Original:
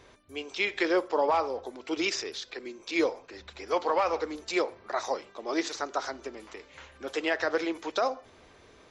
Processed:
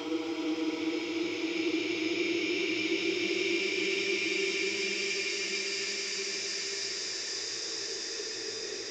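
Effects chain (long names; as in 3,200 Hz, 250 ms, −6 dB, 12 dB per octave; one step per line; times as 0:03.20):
floating-point word with a short mantissa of 6 bits
extreme stretch with random phases 31×, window 0.25 s, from 0:01.94
level −2.5 dB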